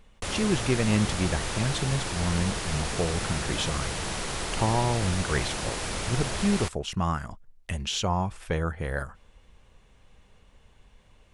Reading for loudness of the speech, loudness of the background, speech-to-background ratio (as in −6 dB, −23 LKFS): −29.5 LKFS, −31.5 LKFS, 2.0 dB